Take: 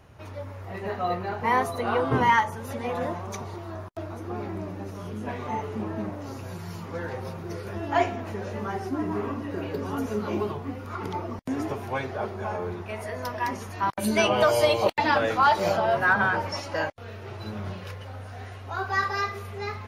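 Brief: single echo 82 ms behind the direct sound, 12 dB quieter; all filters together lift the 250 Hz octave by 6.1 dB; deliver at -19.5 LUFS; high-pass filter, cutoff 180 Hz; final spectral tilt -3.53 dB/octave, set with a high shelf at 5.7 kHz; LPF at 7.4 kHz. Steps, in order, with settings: high-pass 180 Hz; low-pass 7.4 kHz; peaking EQ 250 Hz +9 dB; treble shelf 5.7 kHz +4.5 dB; delay 82 ms -12 dB; trim +6 dB

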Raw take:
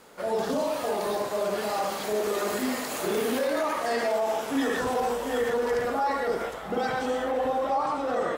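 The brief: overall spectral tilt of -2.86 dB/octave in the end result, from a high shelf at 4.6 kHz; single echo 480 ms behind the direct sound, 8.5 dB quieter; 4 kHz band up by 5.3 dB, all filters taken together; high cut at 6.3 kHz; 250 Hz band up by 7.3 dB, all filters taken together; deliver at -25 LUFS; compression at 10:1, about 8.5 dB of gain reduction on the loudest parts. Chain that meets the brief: low-pass 6.3 kHz; peaking EQ 250 Hz +8 dB; peaking EQ 4 kHz +4.5 dB; treble shelf 4.6 kHz +5.5 dB; compression 10:1, threshold -24 dBFS; delay 480 ms -8.5 dB; trim +3 dB

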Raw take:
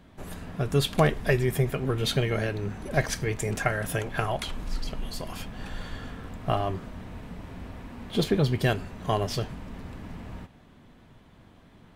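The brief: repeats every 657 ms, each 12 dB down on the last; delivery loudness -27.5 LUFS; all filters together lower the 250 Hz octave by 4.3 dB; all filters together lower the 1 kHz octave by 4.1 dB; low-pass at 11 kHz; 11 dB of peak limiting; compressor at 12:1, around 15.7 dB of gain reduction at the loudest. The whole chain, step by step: low-pass 11 kHz; peaking EQ 250 Hz -7 dB; peaking EQ 1 kHz -5.5 dB; compression 12:1, threshold -36 dBFS; peak limiter -35 dBFS; feedback delay 657 ms, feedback 25%, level -12 dB; trim +17.5 dB

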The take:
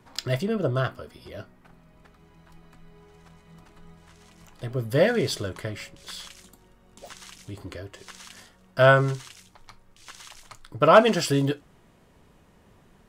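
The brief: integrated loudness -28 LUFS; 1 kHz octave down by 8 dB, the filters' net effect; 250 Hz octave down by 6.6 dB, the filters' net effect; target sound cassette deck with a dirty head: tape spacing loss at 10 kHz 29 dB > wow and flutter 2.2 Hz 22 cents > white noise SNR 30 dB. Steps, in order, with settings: tape spacing loss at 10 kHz 29 dB; peaking EQ 250 Hz -8 dB; peaking EQ 1 kHz -7 dB; wow and flutter 2.2 Hz 22 cents; white noise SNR 30 dB; trim +0.5 dB

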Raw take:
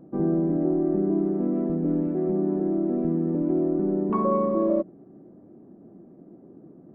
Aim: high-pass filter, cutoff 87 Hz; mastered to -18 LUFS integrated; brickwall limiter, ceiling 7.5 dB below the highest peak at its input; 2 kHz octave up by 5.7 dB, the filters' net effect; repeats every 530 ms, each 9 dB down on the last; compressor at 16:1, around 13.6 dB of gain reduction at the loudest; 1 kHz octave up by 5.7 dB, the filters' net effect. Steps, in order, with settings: high-pass 87 Hz; peaking EQ 1 kHz +5 dB; peaking EQ 2 kHz +5.5 dB; compression 16:1, threshold -31 dBFS; peak limiter -31 dBFS; feedback delay 530 ms, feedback 35%, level -9 dB; trim +21 dB

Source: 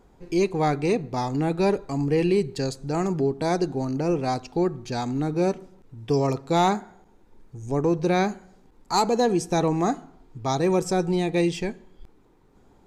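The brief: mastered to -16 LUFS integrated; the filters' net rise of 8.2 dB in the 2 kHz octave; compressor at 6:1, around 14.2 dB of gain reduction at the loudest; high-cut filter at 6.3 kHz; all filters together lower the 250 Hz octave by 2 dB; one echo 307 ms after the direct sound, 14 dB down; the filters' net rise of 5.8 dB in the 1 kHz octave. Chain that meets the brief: low-pass 6.3 kHz; peaking EQ 250 Hz -4 dB; peaking EQ 1 kHz +6.5 dB; peaking EQ 2 kHz +8.5 dB; compression 6:1, threshold -27 dBFS; delay 307 ms -14 dB; trim +15.5 dB

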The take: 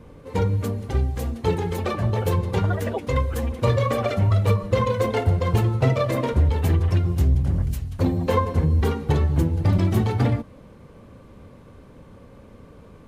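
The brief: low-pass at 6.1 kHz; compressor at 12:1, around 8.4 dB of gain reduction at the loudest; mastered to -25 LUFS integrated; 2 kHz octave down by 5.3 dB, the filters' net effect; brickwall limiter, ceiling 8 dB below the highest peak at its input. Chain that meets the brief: low-pass 6.1 kHz; peaking EQ 2 kHz -6.5 dB; compression 12:1, threshold -23 dBFS; trim +6.5 dB; peak limiter -16 dBFS

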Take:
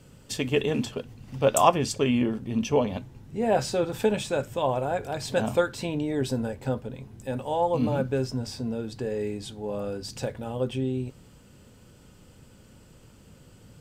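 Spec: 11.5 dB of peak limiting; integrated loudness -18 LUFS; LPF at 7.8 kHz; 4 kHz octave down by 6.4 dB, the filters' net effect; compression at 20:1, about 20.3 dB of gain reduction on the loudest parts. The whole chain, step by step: low-pass 7.8 kHz; peaking EQ 4 kHz -8.5 dB; compression 20:1, threshold -34 dBFS; trim +27 dB; peak limiter -8 dBFS

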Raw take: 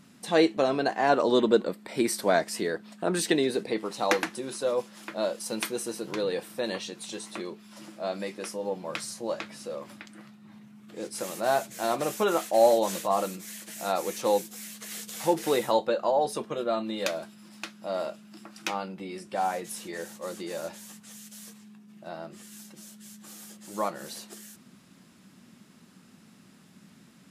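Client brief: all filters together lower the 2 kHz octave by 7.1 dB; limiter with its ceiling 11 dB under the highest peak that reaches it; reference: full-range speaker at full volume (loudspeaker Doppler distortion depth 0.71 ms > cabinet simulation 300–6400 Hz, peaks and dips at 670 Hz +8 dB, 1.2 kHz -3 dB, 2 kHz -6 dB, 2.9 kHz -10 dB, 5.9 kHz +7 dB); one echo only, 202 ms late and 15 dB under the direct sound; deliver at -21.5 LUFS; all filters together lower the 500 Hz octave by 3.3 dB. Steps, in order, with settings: peaking EQ 500 Hz -8.5 dB; peaking EQ 2 kHz -4.5 dB; peak limiter -18.5 dBFS; delay 202 ms -15 dB; loudspeaker Doppler distortion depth 0.71 ms; cabinet simulation 300–6400 Hz, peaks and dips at 670 Hz +8 dB, 1.2 kHz -3 dB, 2 kHz -6 dB, 2.9 kHz -10 dB, 5.9 kHz +7 dB; trim +12 dB

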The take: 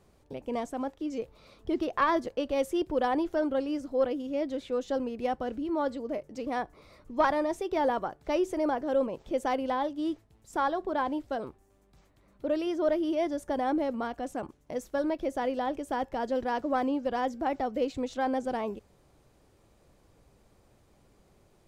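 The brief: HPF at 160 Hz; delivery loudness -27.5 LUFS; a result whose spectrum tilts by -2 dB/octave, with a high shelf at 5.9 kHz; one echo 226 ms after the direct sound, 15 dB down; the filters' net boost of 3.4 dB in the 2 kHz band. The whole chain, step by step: high-pass 160 Hz; peaking EQ 2 kHz +4 dB; treble shelf 5.9 kHz +4 dB; delay 226 ms -15 dB; trim +3 dB

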